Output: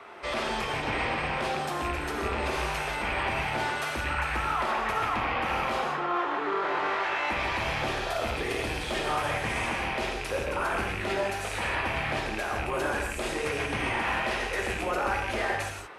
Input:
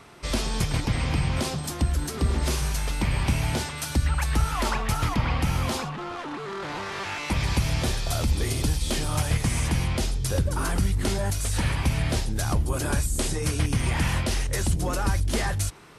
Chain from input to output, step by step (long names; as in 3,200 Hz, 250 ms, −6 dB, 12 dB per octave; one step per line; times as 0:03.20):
loose part that buzzes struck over −23 dBFS, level −23 dBFS
three-way crossover with the lows and the highs turned down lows −20 dB, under 360 Hz, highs −18 dB, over 2,900 Hz
brickwall limiter −27 dBFS, peak gain reduction 10 dB
convolution reverb, pre-delay 3 ms, DRR 0 dB
level +4.5 dB